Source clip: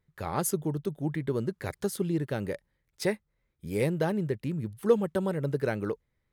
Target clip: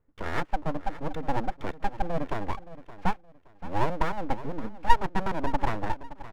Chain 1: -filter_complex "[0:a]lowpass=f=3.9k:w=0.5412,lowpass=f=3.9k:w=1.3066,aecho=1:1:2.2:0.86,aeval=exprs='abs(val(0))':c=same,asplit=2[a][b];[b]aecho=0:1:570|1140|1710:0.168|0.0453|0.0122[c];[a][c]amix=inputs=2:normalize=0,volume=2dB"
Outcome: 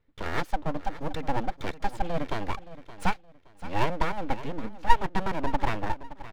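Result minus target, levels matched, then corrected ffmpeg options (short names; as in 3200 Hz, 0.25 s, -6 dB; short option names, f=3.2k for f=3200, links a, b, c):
4000 Hz band +3.0 dB
-filter_complex "[0:a]lowpass=f=1.5k:w=0.5412,lowpass=f=1.5k:w=1.3066,aecho=1:1:2.2:0.86,aeval=exprs='abs(val(0))':c=same,asplit=2[a][b];[b]aecho=0:1:570|1140|1710:0.168|0.0453|0.0122[c];[a][c]amix=inputs=2:normalize=0,volume=2dB"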